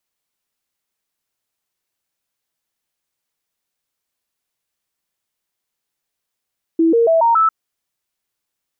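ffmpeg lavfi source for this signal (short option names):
-f lavfi -i "aevalsrc='0.316*clip(min(mod(t,0.14),0.14-mod(t,0.14))/0.005,0,1)*sin(2*PI*328*pow(2,floor(t/0.14)/2)*mod(t,0.14))':d=0.7:s=44100"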